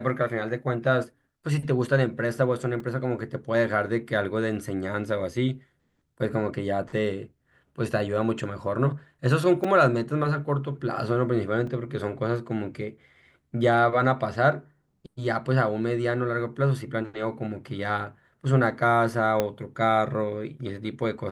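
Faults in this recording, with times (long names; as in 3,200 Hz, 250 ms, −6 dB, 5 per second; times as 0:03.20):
0:02.80: drop-out 2.4 ms
0:09.64: drop-out 4.4 ms
0:11.67: drop-out 3.3 ms
0:19.40: click −10 dBFS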